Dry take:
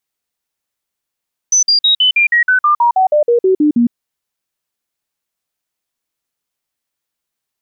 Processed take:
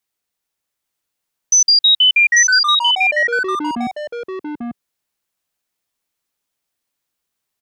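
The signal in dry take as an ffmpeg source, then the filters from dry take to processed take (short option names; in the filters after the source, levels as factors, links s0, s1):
-f lavfi -i "aevalsrc='0.422*clip(min(mod(t,0.16),0.11-mod(t,0.16))/0.005,0,1)*sin(2*PI*6030*pow(2,-floor(t/0.16)/3)*mod(t,0.16))':d=2.4:s=44100"
-filter_complex "[0:a]acrossover=split=110|1600[s0][s1][s2];[s1]asoftclip=type=tanh:threshold=0.0794[s3];[s0][s3][s2]amix=inputs=3:normalize=0,aecho=1:1:843:0.668"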